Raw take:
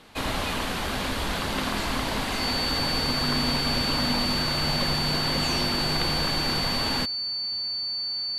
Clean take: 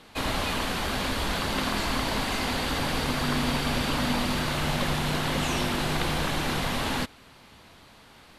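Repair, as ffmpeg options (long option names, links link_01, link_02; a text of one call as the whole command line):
ffmpeg -i in.wav -af "bandreject=frequency=4500:width=30" out.wav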